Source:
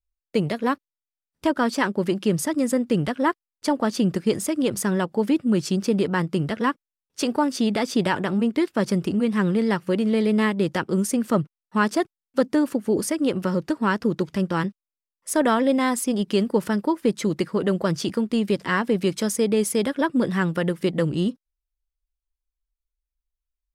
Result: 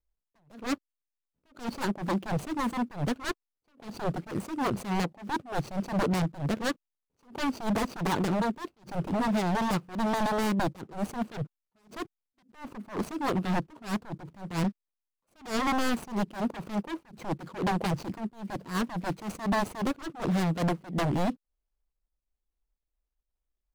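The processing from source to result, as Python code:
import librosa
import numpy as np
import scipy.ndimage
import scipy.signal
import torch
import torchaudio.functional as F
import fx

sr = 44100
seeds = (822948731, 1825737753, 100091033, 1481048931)

y = scipy.signal.medfilt(x, 25)
y = 10.0 ** (-23.0 / 20.0) * (np.abs((y / 10.0 ** (-23.0 / 20.0) + 3.0) % 4.0 - 2.0) - 1.0)
y = fx.attack_slew(y, sr, db_per_s=180.0)
y = y * 10.0 ** (1.5 / 20.0)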